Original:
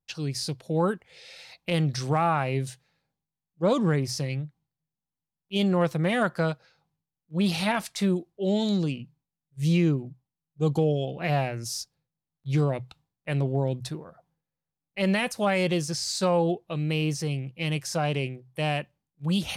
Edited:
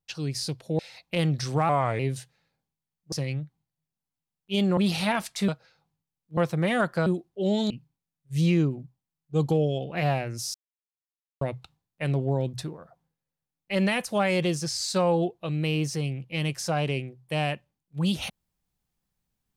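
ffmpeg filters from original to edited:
-filter_complex "[0:a]asplit=12[s0][s1][s2][s3][s4][s5][s6][s7][s8][s9][s10][s11];[s0]atrim=end=0.792[s12];[s1]atrim=start=1.338:end=2.244[s13];[s2]atrim=start=2.24:end=2.5,asetpts=PTS-STARTPTS,asetrate=37926,aresample=44100[s14];[s3]atrim=start=2.496:end=3.632[s15];[s4]atrim=start=4.138:end=5.792[s16];[s5]atrim=start=7.368:end=8.082[s17];[s6]atrim=start=6.478:end=7.372[s18];[s7]atrim=start=5.788:end=6.482[s19];[s8]atrim=start=8.078:end=8.722[s20];[s9]atrim=start=8.968:end=11.81,asetpts=PTS-STARTPTS,afade=t=out:st=2.838:d=0.004:c=hsin[s21];[s10]atrim=start=11.81:end=12.68,asetpts=PTS-STARTPTS,volume=0[s22];[s11]atrim=start=12.68,asetpts=PTS-STARTPTS,afade=t=in:d=0.004:c=hsin[s23];[s12][s13]acrossfade=d=0.004:c1=hsin:c2=hsin[s24];[s24][s14]acrossfade=d=0.004:c1=hsin:c2=hsin[s25];[s25][s15]acrossfade=d=0.004:c1=hsin:c2=hsin[s26];[s26][s16]acrossfade=d=0.004:c1=hsin:c2=hsin[s27];[s27][s17]acrossfade=d=0.004:c1=hsin:c2=hsin[s28];[s28][s18]acrossfade=d=0.004:c1=hsin:c2=hsin[s29];[s29][s19]acrossfade=d=0.004:c1=hsin:c2=hsin[s30];[s30][s20]acrossfade=d=0.004:c1=hsin:c2=hsin[s31];[s21][s22][s23]concat=n=3:v=0:a=1[s32];[s31][s32]acrossfade=d=0.004:c1=hsin:c2=hsin"

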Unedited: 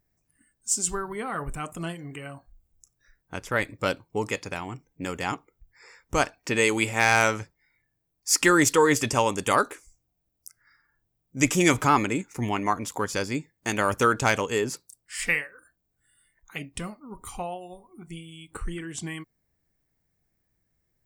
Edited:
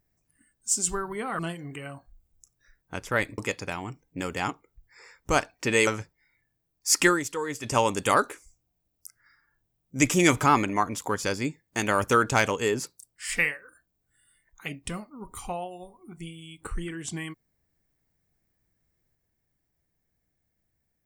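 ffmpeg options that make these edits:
-filter_complex "[0:a]asplit=7[s0][s1][s2][s3][s4][s5][s6];[s0]atrim=end=1.392[s7];[s1]atrim=start=1.788:end=3.782[s8];[s2]atrim=start=4.218:end=6.712[s9];[s3]atrim=start=7.278:end=8.61,asetpts=PTS-STARTPTS,afade=t=out:st=1.192:d=0.14:silence=0.251189[s10];[s4]atrim=start=8.61:end=9.03,asetpts=PTS-STARTPTS,volume=0.251[s11];[s5]atrim=start=9.03:end=12.102,asetpts=PTS-STARTPTS,afade=t=in:d=0.14:silence=0.251189[s12];[s6]atrim=start=12.588[s13];[s7][s8]acrossfade=d=0.004:c1=hsin:c2=hsin[s14];[s14][s9]acrossfade=d=0.004:c1=hsin:c2=hsin[s15];[s10][s11][s12]concat=n=3:v=0:a=1[s16];[s15][s16]acrossfade=d=0.004:c1=hsin:c2=hsin[s17];[s17][s13]acrossfade=d=0.004:c1=hsin:c2=hsin"

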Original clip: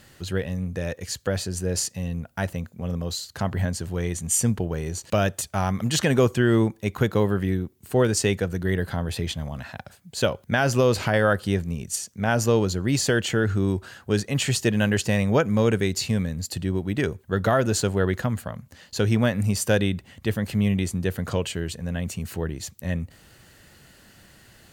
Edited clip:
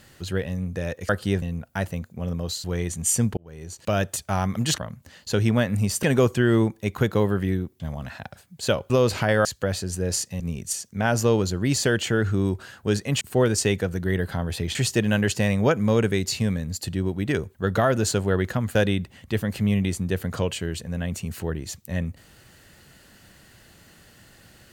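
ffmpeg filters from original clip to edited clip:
-filter_complex "[0:a]asplit=14[s0][s1][s2][s3][s4][s5][s6][s7][s8][s9][s10][s11][s12][s13];[s0]atrim=end=1.092[s14];[s1]atrim=start=11.298:end=11.632[s15];[s2]atrim=start=2.038:end=3.262[s16];[s3]atrim=start=3.888:end=4.62,asetpts=PTS-STARTPTS,afade=t=out:st=0.728:d=0.004:c=hsin[s17];[s4]atrim=start=4.62:end=6.032,asetpts=PTS-STARTPTS,afade=t=in:d=0.69[s18];[s5]atrim=start=18.438:end=19.692[s19];[s6]atrim=start=6.028:end=7.802[s20];[s7]atrim=start=9.338:end=10.442[s21];[s8]atrim=start=10.748:end=11.302[s22];[s9]atrim=start=1.088:end=2.042[s23];[s10]atrim=start=11.628:end=14.442[s24];[s11]atrim=start=7.798:end=9.342[s25];[s12]atrim=start=14.438:end=18.442[s26];[s13]atrim=start=19.688[s27];[s14][s15]acrossfade=d=0.004:c1=hsin:c2=hsin[s28];[s28][s16]acrossfade=d=0.004:c1=hsin:c2=hsin[s29];[s17][s18]concat=n=2:v=0:a=1[s30];[s29][s30]acrossfade=d=0.004:c1=hsin:c2=hsin[s31];[s31][s19]acrossfade=d=0.004:c1=hsin:c2=hsin[s32];[s32][s20]acrossfade=d=0.004:c1=hsin:c2=hsin[s33];[s33][s21]acrossfade=d=0.004:c1=hsin:c2=hsin[s34];[s34][s22]acrossfade=d=0.004:c1=hsin:c2=hsin[s35];[s35][s23]acrossfade=d=0.004:c1=hsin:c2=hsin[s36];[s36][s24]acrossfade=d=0.004:c1=hsin:c2=hsin[s37];[s37][s25]acrossfade=d=0.004:c1=hsin:c2=hsin[s38];[s38][s26]acrossfade=d=0.004:c1=hsin:c2=hsin[s39];[s39][s27]acrossfade=d=0.004:c1=hsin:c2=hsin"

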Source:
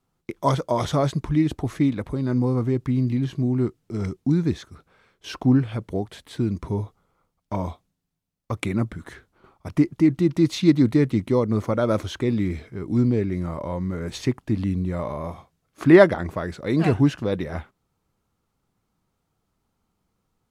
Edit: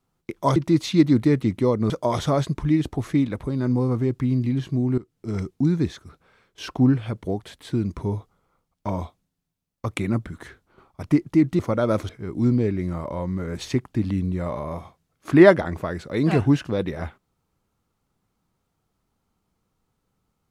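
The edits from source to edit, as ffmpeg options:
-filter_complex "[0:a]asplit=6[s0][s1][s2][s3][s4][s5];[s0]atrim=end=0.562[s6];[s1]atrim=start=10.248:end=11.592[s7];[s2]atrim=start=0.558:end=3.64,asetpts=PTS-STARTPTS,afade=t=out:st=3.078:d=0.004:c=hsin:silence=0.125893[s8];[s3]atrim=start=3.64:end=10.252,asetpts=PTS-STARTPTS,afade=t=in:d=0.32:silence=0.125893[s9];[s4]atrim=start=11.588:end=12.092[s10];[s5]atrim=start=12.618[s11];[s6][s7]acrossfade=d=0.004:c1=hsin:c2=hsin[s12];[s8][s9]concat=n=2:v=0:a=1[s13];[s12][s13]acrossfade=d=0.004:c1=hsin:c2=hsin[s14];[s14][s10]acrossfade=d=0.004:c1=hsin:c2=hsin[s15];[s15][s11]acrossfade=d=0.004:c1=hsin:c2=hsin"

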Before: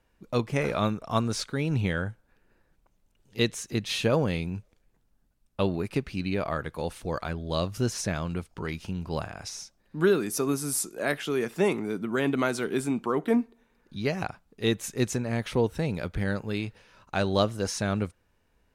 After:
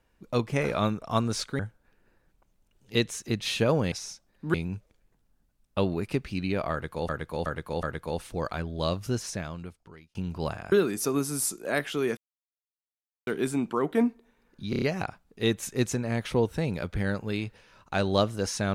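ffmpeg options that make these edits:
-filter_complex "[0:a]asplit=15[s0][s1][s2][s3][s4][s5][s6][s7][s8][s9][s10][s11][s12][s13][s14];[s0]atrim=end=1.592[s15];[s1]atrim=start=2.028:end=4.362[s16];[s2]atrim=start=9.428:end=10.052[s17];[s3]atrim=start=4.358:end=6.912[s18];[s4]atrim=start=6.538:end=6.912[s19];[s5]atrim=start=6.538:end=6.912[s20];[s6]atrim=start=6.538:end=8.86,asetpts=PTS-STARTPTS,afade=t=out:st=1.032:d=1.29[s21];[s7]atrim=start=8.86:end=9.432,asetpts=PTS-STARTPTS,afade=t=in:d=0.004:c=hsin[s22];[s8]atrim=start=10.048:end=11.5,asetpts=PTS-STARTPTS,afade=t=out:st=1.448:d=0.004:c=hsin[s23];[s9]atrim=start=11.5:end=12.6,asetpts=PTS-STARTPTS,volume=0[s24];[s10]atrim=start=12.6:end=14.062,asetpts=PTS-STARTPTS,afade=t=in:d=0.004:c=hsin[s25];[s11]atrim=start=14.028:end=14.062[s26];[s12]atrim=start=14.028:end=14.062[s27];[s13]atrim=start=14.028:end=14.062[s28];[s14]atrim=start=14.028[s29];[s15][s16]acrossfade=d=0.004:c1=hsin:c2=hsin[s30];[s30][s17]acrossfade=d=0.004:c1=hsin:c2=hsin[s31];[s31][s18]acrossfade=d=0.004:c1=hsin:c2=hsin[s32];[s32][s19]acrossfade=d=0.004:c1=hsin:c2=hsin[s33];[s33][s20]acrossfade=d=0.004:c1=hsin:c2=hsin[s34];[s21][s22]concat=n=2:v=0:a=1[s35];[s34][s35]acrossfade=d=0.004:c1=hsin:c2=hsin[s36];[s23][s24][s25]concat=n=3:v=0:a=1[s37];[s36][s37]acrossfade=d=0.004:c1=hsin:c2=hsin[s38];[s38][s26]acrossfade=d=0.004:c1=hsin:c2=hsin[s39];[s39][s27]acrossfade=d=0.004:c1=hsin:c2=hsin[s40];[s40][s28]acrossfade=d=0.004:c1=hsin:c2=hsin[s41];[s41][s29]acrossfade=d=0.004:c1=hsin:c2=hsin"

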